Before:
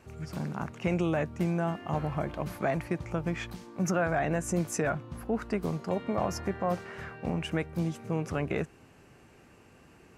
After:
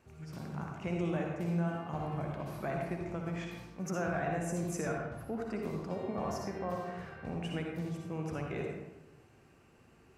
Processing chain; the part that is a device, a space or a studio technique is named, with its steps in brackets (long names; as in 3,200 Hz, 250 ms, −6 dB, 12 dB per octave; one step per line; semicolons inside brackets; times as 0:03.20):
bathroom (convolution reverb RT60 1.0 s, pre-delay 52 ms, DRR 0.5 dB)
level −9 dB